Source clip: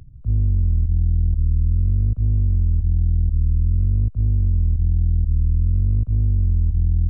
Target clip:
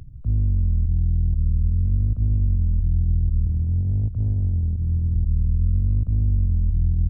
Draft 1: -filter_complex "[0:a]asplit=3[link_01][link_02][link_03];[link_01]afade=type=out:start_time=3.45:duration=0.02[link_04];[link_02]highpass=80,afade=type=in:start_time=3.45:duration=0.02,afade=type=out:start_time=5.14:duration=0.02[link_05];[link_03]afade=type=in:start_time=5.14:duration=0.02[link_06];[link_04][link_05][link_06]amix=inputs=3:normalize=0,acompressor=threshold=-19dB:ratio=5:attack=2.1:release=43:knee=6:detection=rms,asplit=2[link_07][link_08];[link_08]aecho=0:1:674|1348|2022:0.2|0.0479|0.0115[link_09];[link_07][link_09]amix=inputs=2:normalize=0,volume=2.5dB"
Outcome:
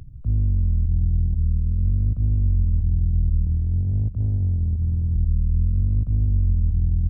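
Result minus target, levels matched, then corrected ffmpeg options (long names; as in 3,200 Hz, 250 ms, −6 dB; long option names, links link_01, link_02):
echo 491 ms early
-filter_complex "[0:a]asplit=3[link_01][link_02][link_03];[link_01]afade=type=out:start_time=3.45:duration=0.02[link_04];[link_02]highpass=80,afade=type=in:start_time=3.45:duration=0.02,afade=type=out:start_time=5.14:duration=0.02[link_05];[link_03]afade=type=in:start_time=5.14:duration=0.02[link_06];[link_04][link_05][link_06]amix=inputs=3:normalize=0,acompressor=threshold=-19dB:ratio=5:attack=2.1:release=43:knee=6:detection=rms,asplit=2[link_07][link_08];[link_08]aecho=0:1:1165|2330|3495:0.2|0.0479|0.0115[link_09];[link_07][link_09]amix=inputs=2:normalize=0,volume=2.5dB"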